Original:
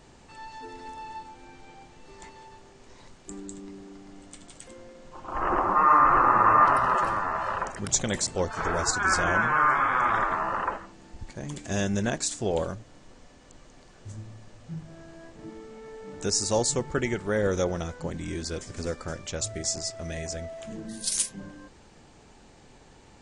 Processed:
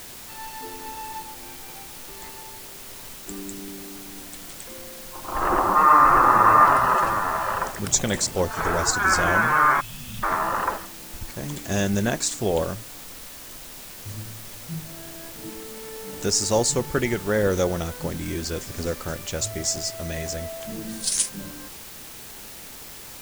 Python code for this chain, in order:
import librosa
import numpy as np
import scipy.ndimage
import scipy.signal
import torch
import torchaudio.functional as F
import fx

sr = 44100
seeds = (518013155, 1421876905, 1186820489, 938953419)

p1 = fx.spec_erase(x, sr, start_s=9.8, length_s=0.43, low_hz=250.0, high_hz=2500.0)
p2 = fx.quant_dither(p1, sr, seeds[0], bits=6, dither='triangular')
y = p1 + (p2 * librosa.db_to_amplitude(-5.0))